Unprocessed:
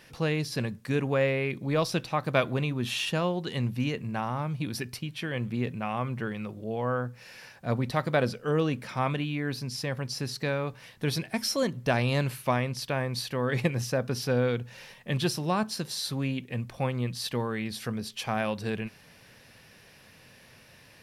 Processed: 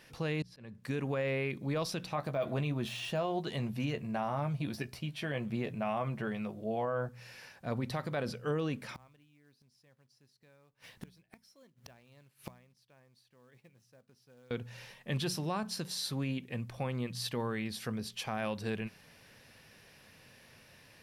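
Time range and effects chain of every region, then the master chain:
0.42–0.84 s: low-pass 3.5 kHz 6 dB/octave + slow attack 385 ms
2.15–7.09 s: de-esser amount 95% + peaking EQ 660 Hz +9.5 dB 0.32 oct + doubling 14 ms -8.5 dB
8.94–14.51 s: short-mantissa float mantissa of 2-bit + inverted gate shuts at -30 dBFS, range -30 dB
whole clip: de-hum 60.59 Hz, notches 3; peak limiter -21 dBFS; trim -4 dB

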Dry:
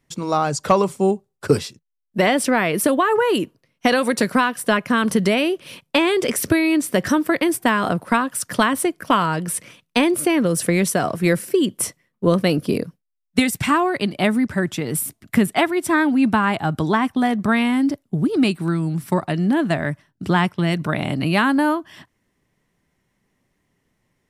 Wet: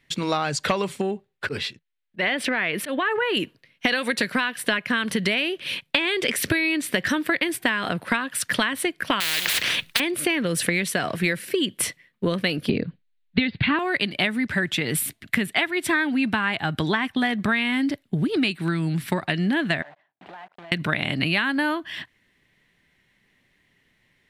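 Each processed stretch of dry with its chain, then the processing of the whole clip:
1.01–3.37 s: tone controls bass -2 dB, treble -9 dB + slow attack 168 ms + compression 2.5:1, threshold -20 dBFS
9.20–10.00 s: modulation noise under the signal 23 dB + spectrum-flattening compressor 10:1
12.69–13.79 s: steep low-pass 4.6 kHz 96 dB/octave + bass shelf 440 Hz +10.5 dB
19.82–20.72 s: block-companded coder 3-bit + band-pass filter 740 Hz, Q 3.8 + compression 5:1, threshold -41 dBFS
whole clip: high-order bell 2.6 kHz +11 dB; compression 5:1, threshold -20 dBFS

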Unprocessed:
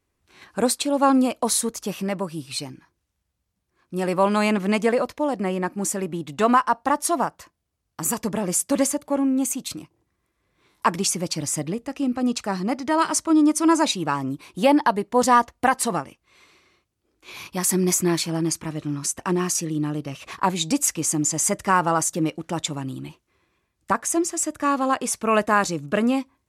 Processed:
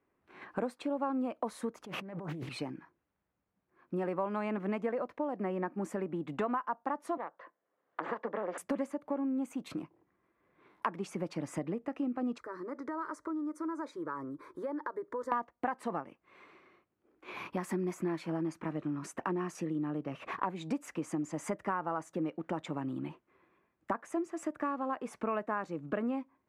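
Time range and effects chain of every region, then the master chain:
1.84–2.49 s: bass shelf 110 Hz +8.5 dB + compressor with a negative ratio -38 dBFS + loudspeaker Doppler distortion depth 0.68 ms
7.17–8.58 s: valve stage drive 21 dB, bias 0.8 + cabinet simulation 360–3900 Hz, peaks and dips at 520 Hz +8 dB, 1.1 kHz +3 dB, 1.8 kHz +5 dB, 2.5 kHz -6 dB + three bands compressed up and down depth 70%
12.38–15.32 s: compression 3:1, threshold -34 dBFS + static phaser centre 750 Hz, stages 6
whole clip: three-band isolator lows -17 dB, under 160 Hz, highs -24 dB, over 2.2 kHz; compression 4:1, threshold -35 dBFS; trim +1.5 dB

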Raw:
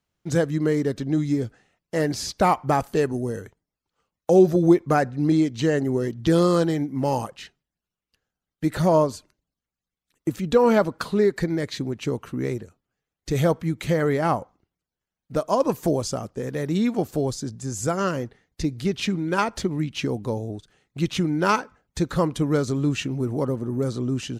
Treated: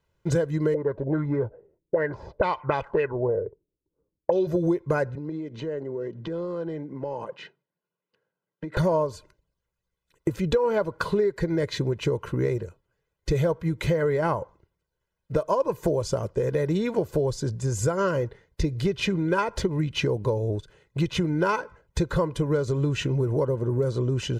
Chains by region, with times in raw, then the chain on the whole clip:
0.74–4.47 s: bass shelf 420 Hz -7 dB + touch-sensitive low-pass 300–3900 Hz up, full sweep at -18 dBFS
5.15–8.77 s: high-pass 160 Hz 24 dB/octave + compression 16:1, threshold -32 dBFS + tape spacing loss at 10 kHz 22 dB
whole clip: treble shelf 2.9 kHz -10 dB; comb 2 ms, depth 68%; compression 6:1, threshold -27 dBFS; trim +6 dB

